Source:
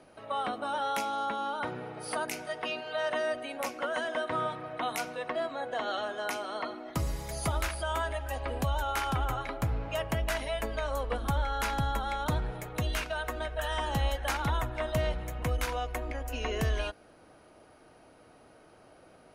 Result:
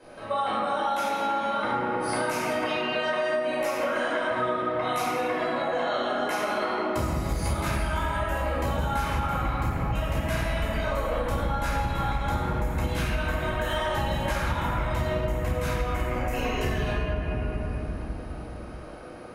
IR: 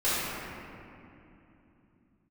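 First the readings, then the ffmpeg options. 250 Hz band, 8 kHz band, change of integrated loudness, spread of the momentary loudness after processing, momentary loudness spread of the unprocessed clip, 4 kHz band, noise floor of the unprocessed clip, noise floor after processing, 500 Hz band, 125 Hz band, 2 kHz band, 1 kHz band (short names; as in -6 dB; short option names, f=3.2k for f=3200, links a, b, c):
+8.0 dB, +1.0 dB, +5.0 dB, 3 LU, 5 LU, +3.0 dB, -58 dBFS, -38 dBFS, +6.0 dB, +5.5 dB, +5.5 dB, +5.5 dB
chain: -filter_complex "[1:a]atrim=start_sample=2205[a];[0:a][a]afir=irnorm=-1:irlink=0,acompressor=threshold=-24dB:ratio=6"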